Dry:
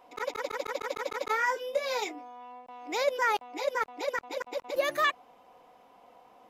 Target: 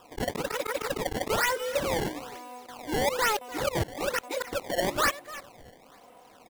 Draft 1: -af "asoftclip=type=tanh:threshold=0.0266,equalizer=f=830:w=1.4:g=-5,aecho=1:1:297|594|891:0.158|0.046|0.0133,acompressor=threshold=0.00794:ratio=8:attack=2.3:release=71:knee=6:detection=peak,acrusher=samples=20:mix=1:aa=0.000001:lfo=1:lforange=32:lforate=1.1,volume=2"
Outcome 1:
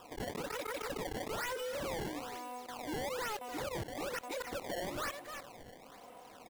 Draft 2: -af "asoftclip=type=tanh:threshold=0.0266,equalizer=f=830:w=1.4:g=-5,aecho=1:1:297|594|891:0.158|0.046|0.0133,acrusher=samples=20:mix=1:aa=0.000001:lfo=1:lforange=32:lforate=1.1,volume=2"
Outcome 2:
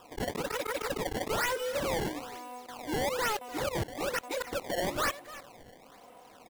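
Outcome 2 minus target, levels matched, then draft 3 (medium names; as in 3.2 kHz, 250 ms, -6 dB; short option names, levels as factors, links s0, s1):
saturation: distortion +7 dB
-af "asoftclip=type=tanh:threshold=0.0668,equalizer=f=830:w=1.4:g=-5,aecho=1:1:297|594|891:0.158|0.046|0.0133,acrusher=samples=20:mix=1:aa=0.000001:lfo=1:lforange=32:lforate=1.1,volume=2"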